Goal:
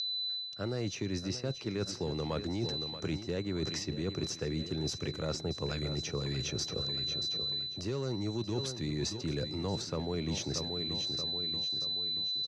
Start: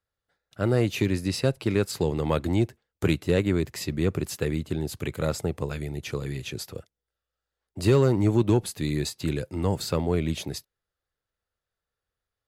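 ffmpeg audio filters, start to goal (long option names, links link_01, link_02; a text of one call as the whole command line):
ffmpeg -i in.wav -filter_complex "[0:a]aeval=exprs='val(0)+0.00891*sin(2*PI*4000*n/s)':channel_layout=same,acrossover=split=100|2000[link_01][link_02][link_03];[link_01]acompressor=threshold=-41dB:ratio=4[link_04];[link_02]acompressor=threshold=-23dB:ratio=4[link_05];[link_03]acompressor=threshold=-45dB:ratio=4[link_06];[link_04][link_05][link_06]amix=inputs=3:normalize=0,lowpass=frequency=5800:width_type=q:width=7.7,aecho=1:1:631|1262|1893|2524:0.211|0.0951|0.0428|0.0193,areverse,acompressor=threshold=-39dB:ratio=6,areverse,volume=6.5dB" out.wav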